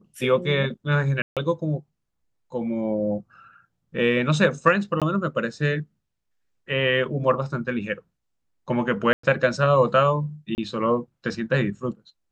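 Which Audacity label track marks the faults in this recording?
1.220000	1.370000	drop-out 147 ms
5.000000	5.020000	drop-out 17 ms
9.130000	9.230000	drop-out 104 ms
10.550000	10.580000	drop-out 29 ms

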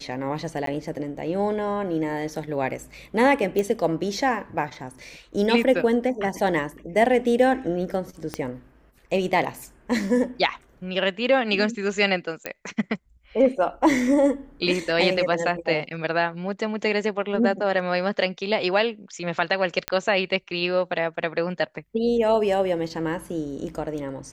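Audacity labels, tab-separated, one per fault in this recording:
0.660000	0.670000	drop-out 13 ms
3.590000	3.590000	click −12 dBFS
8.340000	8.340000	click −14 dBFS
12.460000	12.460000	click −13 dBFS
19.880000	19.880000	click −8 dBFS

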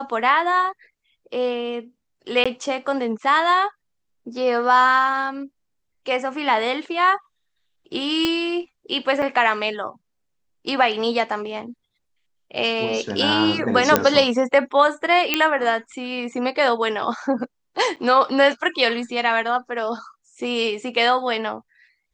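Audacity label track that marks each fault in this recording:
2.440000	2.460000	drop-out 16 ms
8.250000	8.250000	click −7 dBFS
9.220000	9.220000	drop-out 4.8 ms
13.960000	13.960000	click 0 dBFS
15.340000	15.340000	click −2 dBFS
17.960000	17.970000	drop-out 7 ms

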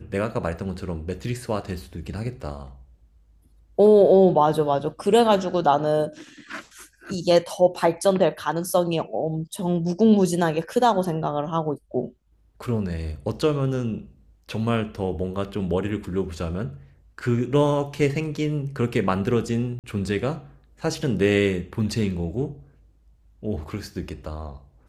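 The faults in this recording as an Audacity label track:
19.790000	19.840000	drop-out 48 ms

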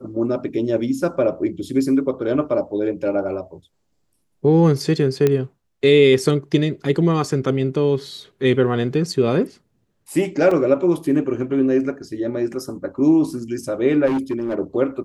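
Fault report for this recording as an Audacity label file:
5.270000	5.270000	click −6 dBFS
10.510000	10.510000	drop-out 3.7 ms
14.060000	14.550000	clipping −17.5 dBFS

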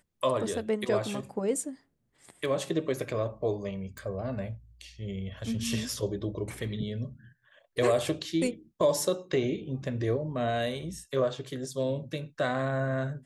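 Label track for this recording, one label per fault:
3.980000	3.980000	click

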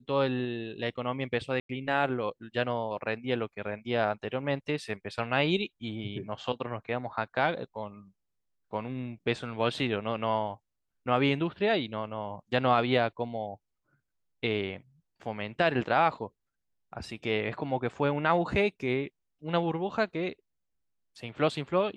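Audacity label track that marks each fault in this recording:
1.600000	1.690000	drop-out 93 ms

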